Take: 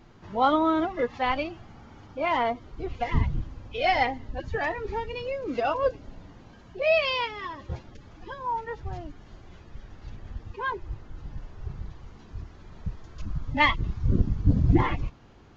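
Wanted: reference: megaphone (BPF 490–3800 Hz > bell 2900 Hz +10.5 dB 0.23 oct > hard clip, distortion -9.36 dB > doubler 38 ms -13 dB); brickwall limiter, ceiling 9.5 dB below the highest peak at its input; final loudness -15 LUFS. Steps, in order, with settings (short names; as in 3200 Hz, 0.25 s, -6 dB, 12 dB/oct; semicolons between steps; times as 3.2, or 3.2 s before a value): limiter -18.5 dBFS; BPF 490–3800 Hz; bell 2900 Hz +10.5 dB 0.23 oct; hard clip -28 dBFS; doubler 38 ms -13 dB; gain +19 dB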